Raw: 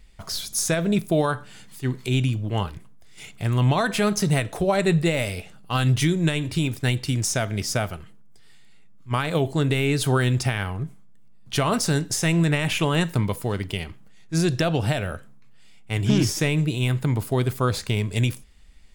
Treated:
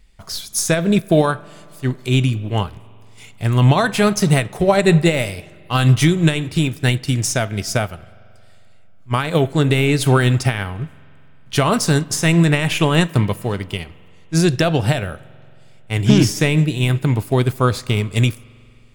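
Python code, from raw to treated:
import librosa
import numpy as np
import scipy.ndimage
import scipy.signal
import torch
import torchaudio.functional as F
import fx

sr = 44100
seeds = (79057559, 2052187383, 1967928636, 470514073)

y = fx.rev_spring(x, sr, rt60_s=2.8, pass_ms=(45,), chirp_ms=65, drr_db=16.0)
y = fx.upward_expand(y, sr, threshold_db=-34.0, expansion=1.5)
y = y * 10.0 ** (8.5 / 20.0)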